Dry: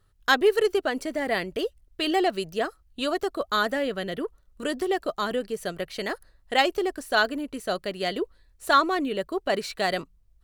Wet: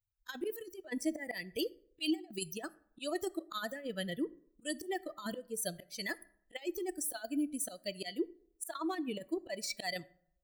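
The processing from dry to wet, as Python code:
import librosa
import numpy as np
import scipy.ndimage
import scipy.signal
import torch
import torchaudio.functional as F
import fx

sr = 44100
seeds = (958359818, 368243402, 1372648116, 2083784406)

y = fx.bin_expand(x, sr, power=2.0)
y = fx.auto_swell(y, sr, attack_ms=267.0)
y = fx.tilt_eq(y, sr, slope=3.0)
y = fx.over_compress(y, sr, threshold_db=-39.0, ratio=-0.5)
y = fx.peak_eq(y, sr, hz=320.0, db=7.5, octaves=0.42)
y = fx.rev_plate(y, sr, seeds[0], rt60_s=0.66, hf_ratio=0.55, predelay_ms=0, drr_db=18.0)
y = y * 10.0 ** (1.0 / 20.0)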